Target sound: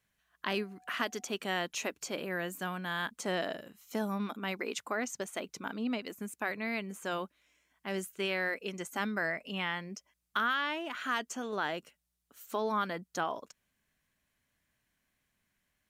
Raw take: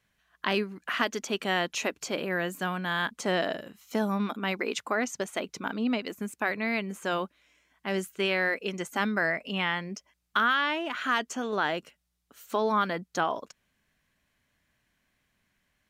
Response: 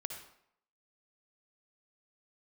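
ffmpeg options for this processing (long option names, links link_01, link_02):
-filter_complex "[0:a]acrossover=split=7000[link_01][link_02];[link_02]acontrast=51[link_03];[link_01][link_03]amix=inputs=2:normalize=0,asettb=1/sr,asplit=3[link_04][link_05][link_06];[link_04]atrim=end=0.554[link_07];[link_05]atrim=start=0.55:end=1.33,asetpts=PTS-STARTPTS,afade=type=in:duration=0.004:curve=qsin,afade=type=out:start_time=0.776:duration=0.004:curve=qsin,aeval=exprs='val(0)+0.002*sin(2*PI*740*n/s)':channel_layout=same[link_08];[link_06]atrim=start=1.326[link_09];[link_07][link_08]acrossfade=duration=0.004:curve1=hsin:curve2=qsin[link_10];[link_10][link_09]acrossfade=duration=0.004:curve1=qsin:curve2=hsin,volume=-6dB"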